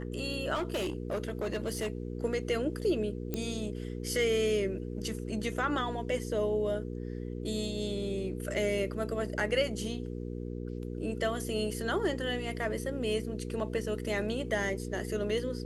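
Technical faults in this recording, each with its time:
mains hum 60 Hz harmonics 8 −38 dBFS
0:00.54–0:01.90: clipping −28.5 dBFS
0:03.34: click −19 dBFS

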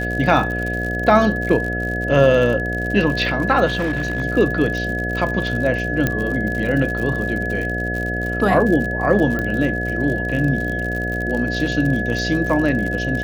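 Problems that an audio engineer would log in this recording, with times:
mains buzz 60 Hz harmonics 12 −25 dBFS
surface crackle 65 per second −25 dBFS
whistle 1,700 Hz −24 dBFS
0:03.66–0:04.22: clipping −16.5 dBFS
0:06.07: click −5 dBFS
0:09.39: click −12 dBFS

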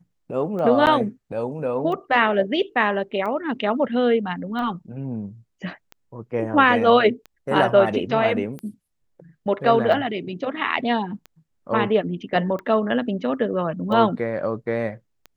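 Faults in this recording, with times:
scratch tick 45 rpm −22 dBFS
0:00.86–0:00.87: drop-out 9.1 ms

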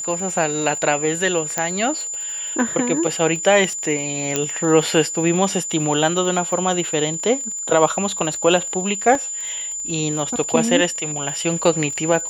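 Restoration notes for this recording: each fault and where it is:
surface crackle 39 per second −28 dBFS
whistle 7,100 Hz −25 dBFS
0:01.58: click −6 dBFS
0:04.36: click −5 dBFS
0:09.15: drop-out 2.3 ms

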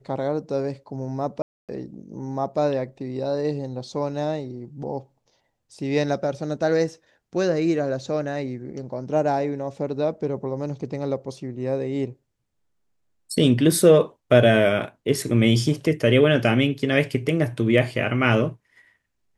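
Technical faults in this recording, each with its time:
0:01.42–0:01.69: drop-out 267 ms

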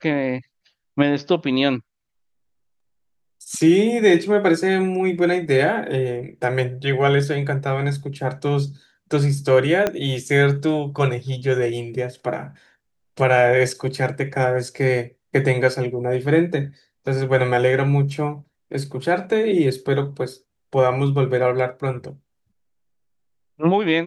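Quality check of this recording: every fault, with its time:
0:09.87: click −7 dBFS

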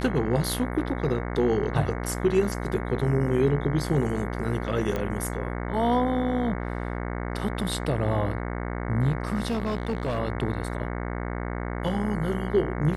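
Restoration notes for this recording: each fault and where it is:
mains buzz 60 Hz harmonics 37 −31 dBFS
0:04.96: click −16 dBFS
0:09.48–0:10.19: clipping −22.5 dBFS

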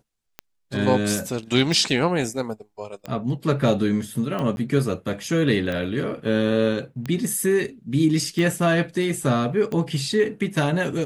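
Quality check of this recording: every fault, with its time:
scratch tick 45 rpm −16 dBFS
0:04.56–0:04.57: drop-out 11 ms

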